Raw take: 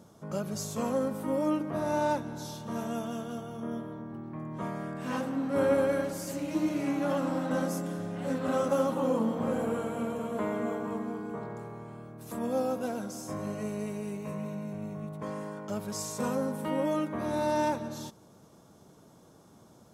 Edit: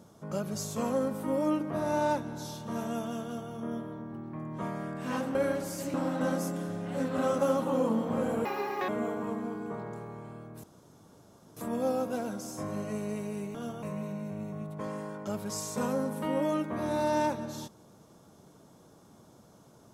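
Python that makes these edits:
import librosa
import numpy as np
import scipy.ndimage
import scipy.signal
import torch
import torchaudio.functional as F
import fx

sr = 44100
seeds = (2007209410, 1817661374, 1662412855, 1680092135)

y = fx.edit(x, sr, fx.duplicate(start_s=3.23, length_s=0.28, to_s=14.25),
    fx.cut(start_s=5.35, length_s=0.49),
    fx.cut(start_s=6.43, length_s=0.81),
    fx.speed_span(start_s=9.75, length_s=0.77, speed=1.77),
    fx.insert_room_tone(at_s=12.27, length_s=0.93), tone=tone)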